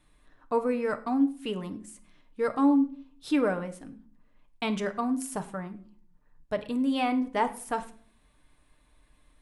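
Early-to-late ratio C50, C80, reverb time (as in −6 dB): 14.5 dB, 18.5 dB, non-exponential decay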